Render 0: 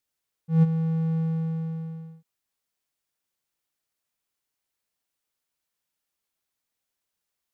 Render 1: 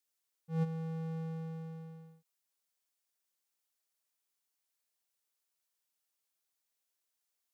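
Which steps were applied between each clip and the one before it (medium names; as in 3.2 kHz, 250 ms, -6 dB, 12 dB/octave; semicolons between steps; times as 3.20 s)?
tone controls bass -10 dB, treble +5 dB; trim -5.5 dB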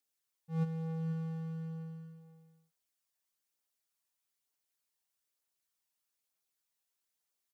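phaser 1.1 Hz, delay 1.2 ms, feedback 27%; delay 487 ms -12.5 dB; trim -1.5 dB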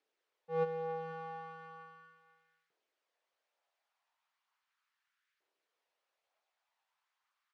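LFO high-pass saw up 0.37 Hz 380–1700 Hz; band-pass 100–2800 Hz; trim +8 dB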